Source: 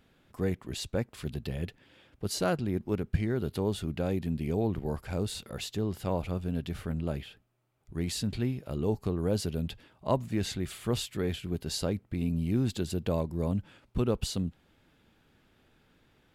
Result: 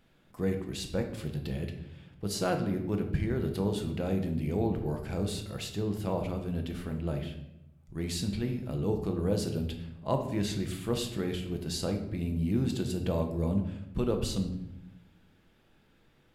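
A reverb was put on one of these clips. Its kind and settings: shoebox room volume 290 m³, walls mixed, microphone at 0.71 m; gain -2 dB

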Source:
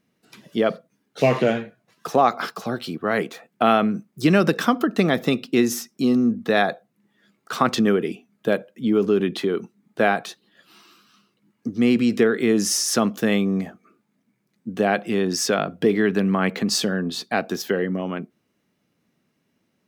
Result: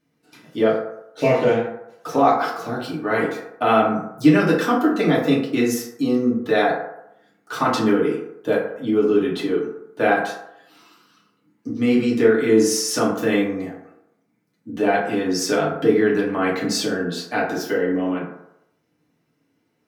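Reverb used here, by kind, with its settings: FDN reverb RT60 0.81 s, low-frequency decay 0.7×, high-frequency decay 0.4×, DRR -6.5 dB; gain -6 dB

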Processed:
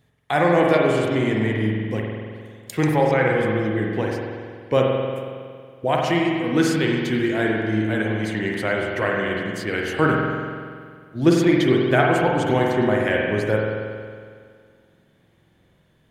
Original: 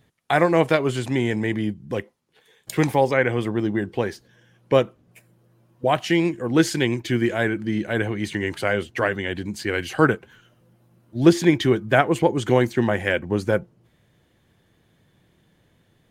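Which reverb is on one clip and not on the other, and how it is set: spring tank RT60 2 s, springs 46 ms, chirp 60 ms, DRR -1.5 dB; gain -2.5 dB

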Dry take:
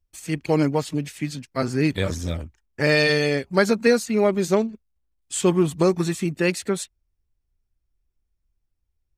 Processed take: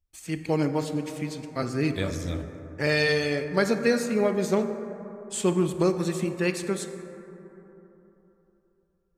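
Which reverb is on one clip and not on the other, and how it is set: plate-style reverb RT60 3.5 s, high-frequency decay 0.3×, DRR 7.5 dB; gain -5 dB

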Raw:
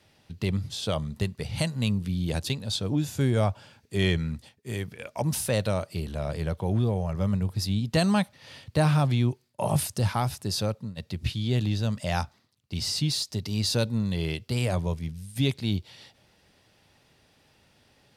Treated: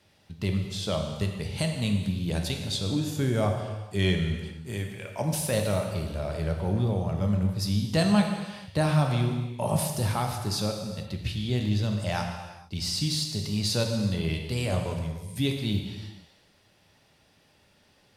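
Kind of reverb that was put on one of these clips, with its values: non-linear reverb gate 0.49 s falling, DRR 2.5 dB; gain -2 dB

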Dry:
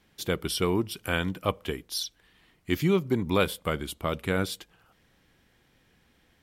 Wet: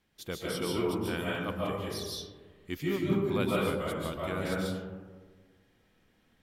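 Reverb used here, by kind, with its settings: digital reverb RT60 1.5 s, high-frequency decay 0.3×, pre-delay 0.105 s, DRR -5 dB; gain -10 dB

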